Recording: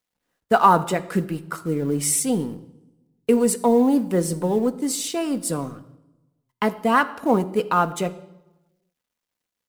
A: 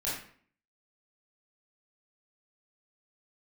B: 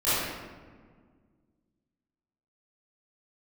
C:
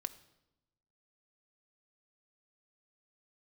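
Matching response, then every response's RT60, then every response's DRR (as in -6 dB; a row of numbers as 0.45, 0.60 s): C; 0.50, 1.7, 0.90 s; -9.0, -16.5, 10.0 dB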